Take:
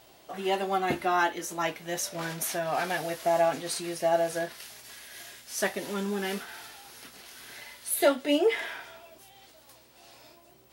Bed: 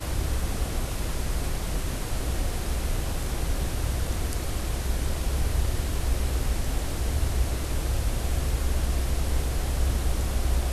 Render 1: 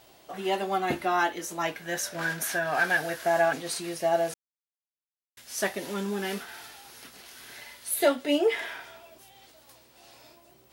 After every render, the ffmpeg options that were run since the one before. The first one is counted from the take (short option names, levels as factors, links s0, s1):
-filter_complex "[0:a]asettb=1/sr,asplit=3[s0][s1][s2];[s0]atrim=end=1.754[s3];[s1]atrim=start=1.75:end=3.53,asetpts=PTS-STARTPTS,afade=t=in:d=0.004:c=qsin,afade=t=out:st=1.776:d=0.004:c=qsin,equalizer=f=1600:t=o:w=0.25:g=13.5[s4];[s2]atrim=start=3.526[s5];[s3][s4]acrossfade=d=0.004:c1=hsin:c2=qsin[s6];[s6][s5]acrossfade=d=0.004:c1=qsin:c2=hsin,asplit=3[s7][s8][s9];[s7]atrim=end=4.34,asetpts=PTS-STARTPTS,afade=t=out:st=4.336:d=0.004:c=hsin[s10];[s8]atrim=start=4.34:end=5.37,asetpts=PTS-STARTPTS,volume=0[s11];[s9]atrim=start=5.37,asetpts=PTS-STARTPTS,afade=t=in:d=0.004:c=hsin[s12];[s10][s11][s12]concat=n=3:v=0:a=1"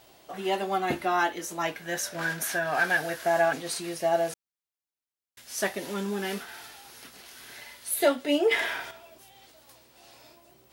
-filter_complex "[0:a]asplit=3[s0][s1][s2];[s0]atrim=end=8.512[s3];[s1]atrim=start=8.508:end=8.912,asetpts=PTS-STARTPTS,volume=2.11[s4];[s2]atrim=start=8.908[s5];[s3][s4]acrossfade=d=0.004:c1=hsin:c2=hsin[s6];[s6][s5]acrossfade=d=0.004:c1=hsin:c2=hsin"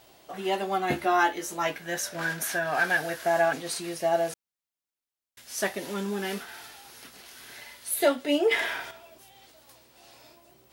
-filter_complex "[0:a]asettb=1/sr,asplit=3[s0][s1][s2];[s0]atrim=end=0.884[s3];[s1]atrim=start=0.88:end=1.78,asetpts=PTS-STARTPTS,afade=t=in:d=0.004:c=qsin,afade=t=out:st=0.896:d=0.004:c=qsin,asplit=2[s4][s5];[s5]adelay=14,volume=0.562[s6];[s4][s6]amix=inputs=2:normalize=0,atrim=end_sample=39690[s7];[s2]atrim=start=1.776[s8];[s3][s7]acrossfade=d=0.004:c1=hsin:c2=qsin[s9];[s9][s8]acrossfade=d=0.004:c1=qsin:c2=hsin"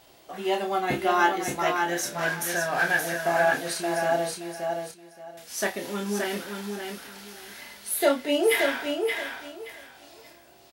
-filter_complex "[0:a]asplit=2[s0][s1];[s1]adelay=29,volume=0.501[s2];[s0][s2]amix=inputs=2:normalize=0,asplit=2[s3][s4];[s4]aecho=0:1:574|1148|1722:0.562|0.118|0.0248[s5];[s3][s5]amix=inputs=2:normalize=0"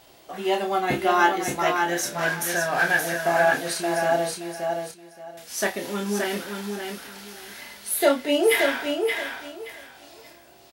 -af "volume=1.33"